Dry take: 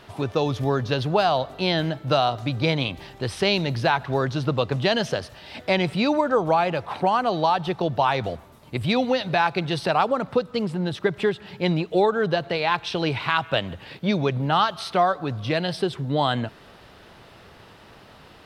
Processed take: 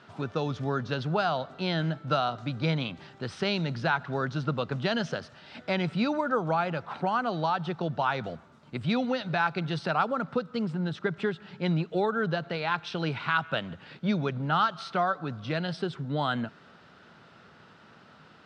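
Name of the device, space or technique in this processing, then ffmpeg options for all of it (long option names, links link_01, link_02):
car door speaker: -af "highpass=100,equalizer=frequency=160:width_type=q:width=4:gain=7,equalizer=frequency=230:width_type=q:width=4:gain=6,equalizer=frequency=1400:width_type=q:width=4:gain=10,lowpass=frequency=7400:width=0.5412,lowpass=frequency=7400:width=1.3066,volume=-8.5dB"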